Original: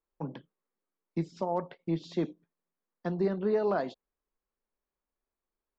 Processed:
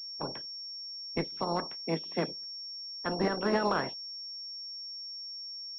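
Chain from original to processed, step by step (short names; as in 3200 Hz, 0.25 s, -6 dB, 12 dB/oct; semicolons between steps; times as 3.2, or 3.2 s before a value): spectral limiter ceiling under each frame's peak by 21 dB; 1.85–2.27 elliptic high-pass 160 Hz; pulse-width modulation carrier 5500 Hz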